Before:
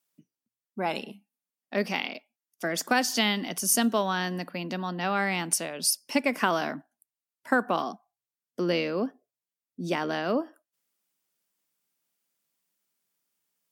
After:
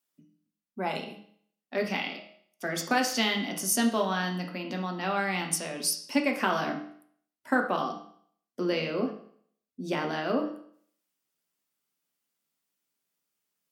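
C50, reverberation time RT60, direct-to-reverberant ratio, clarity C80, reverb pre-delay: 8.0 dB, 0.60 s, 2.0 dB, 11.5 dB, 6 ms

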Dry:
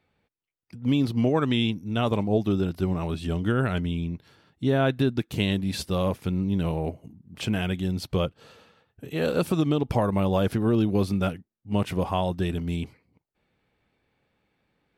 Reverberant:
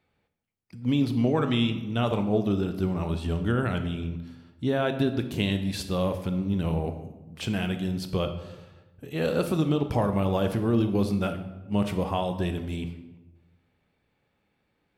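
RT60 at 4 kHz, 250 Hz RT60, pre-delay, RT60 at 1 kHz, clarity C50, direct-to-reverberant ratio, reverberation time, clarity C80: 0.70 s, 1.3 s, 20 ms, 1.0 s, 9.5 dB, 7.5 dB, 1.1 s, 12.0 dB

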